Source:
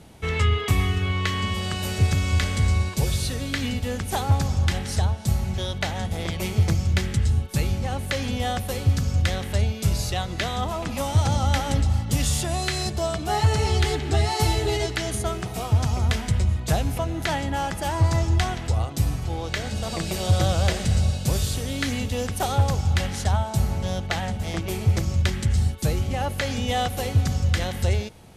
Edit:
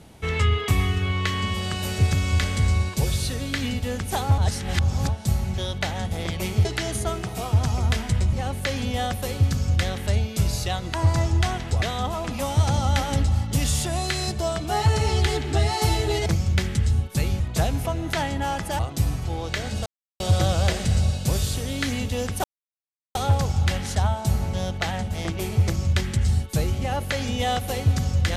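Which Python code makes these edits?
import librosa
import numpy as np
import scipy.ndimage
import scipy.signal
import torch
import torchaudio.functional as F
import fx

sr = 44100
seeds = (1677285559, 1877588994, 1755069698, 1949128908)

y = fx.edit(x, sr, fx.reverse_span(start_s=4.38, length_s=0.71),
    fx.swap(start_s=6.65, length_s=1.14, other_s=14.84, other_length_s=1.68),
    fx.move(start_s=17.91, length_s=0.88, to_s=10.4),
    fx.silence(start_s=19.86, length_s=0.34),
    fx.insert_silence(at_s=22.44, length_s=0.71), tone=tone)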